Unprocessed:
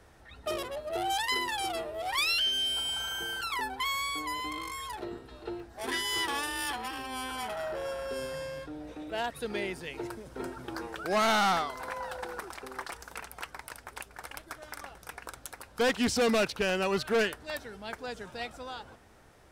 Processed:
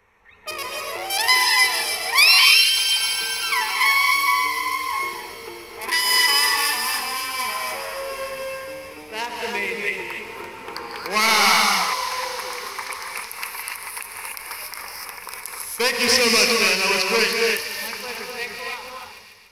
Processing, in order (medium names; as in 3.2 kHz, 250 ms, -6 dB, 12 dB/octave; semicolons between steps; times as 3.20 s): local Wiener filter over 9 samples; rippled EQ curve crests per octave 0.86, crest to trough 11 dB; feedback echo behind a high-pass 146 ms, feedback 83%, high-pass 3 kHz, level -10.5 dB; gated-style reverb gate 320 ms rising, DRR 0 dB; level rider gain up to 6.5 dB; tilt shelf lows -9.5 dB; de-hum 64.43 Hz, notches 36; endings held to a fixed fall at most 150 dB/s; trim -1 dB